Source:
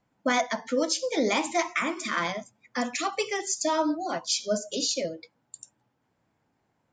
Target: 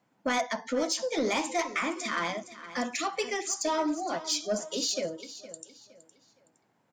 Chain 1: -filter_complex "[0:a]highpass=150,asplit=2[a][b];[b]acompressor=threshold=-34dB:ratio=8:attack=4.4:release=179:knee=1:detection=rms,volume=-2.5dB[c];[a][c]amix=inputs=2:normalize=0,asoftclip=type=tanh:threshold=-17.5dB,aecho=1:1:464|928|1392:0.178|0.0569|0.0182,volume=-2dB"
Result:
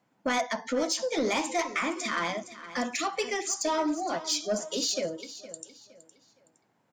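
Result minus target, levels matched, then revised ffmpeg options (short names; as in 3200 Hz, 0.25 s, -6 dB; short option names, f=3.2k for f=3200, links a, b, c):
compressor: peak gain reduction -10 dB
-filter_complex "[0:a]highpass=150,asplit=2[a][b];[b]acompressor=threshold=-45.5dB:ratio=8:attack=4.4:release=179:knee=1:detection=rms,volume=-2.5dB[c];[a][c]amix=inputs=2:normalize=0,asoftclip=type=tanh:threshold=-17.5dB,aecho=1:1:464|928|1392:0.178|0.0569|0.0182,volume=-2dB"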